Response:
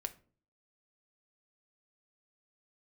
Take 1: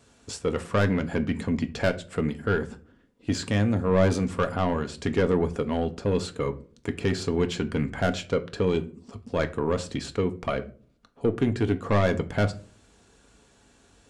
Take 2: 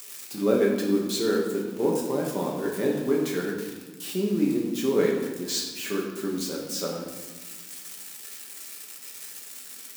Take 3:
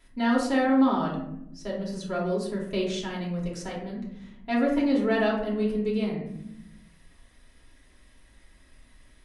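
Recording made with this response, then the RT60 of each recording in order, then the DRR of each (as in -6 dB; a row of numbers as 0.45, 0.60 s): 1; 0.45, 1.4, 0.80 s; 7.0, -3.0, -4.5 dB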